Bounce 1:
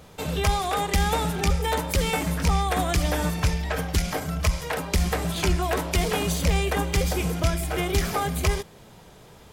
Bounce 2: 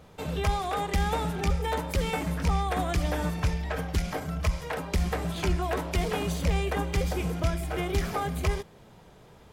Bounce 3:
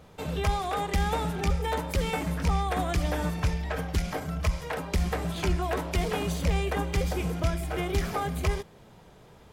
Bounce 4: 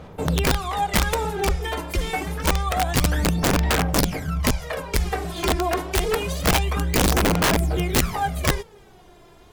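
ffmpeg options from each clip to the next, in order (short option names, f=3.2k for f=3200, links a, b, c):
-af "highshelf=f=3.5k:g=-7.5,volume=-3.5dB"
-af anull
-af "aphaser=in_gain=1:out_gain=1:delay=2.9:decay=0.67:speed=0.27:type=sinusoidal,aeval=exprs='(mod(5.62*val(0)+1,2)-1)/5.62':c=same,volume=2dB"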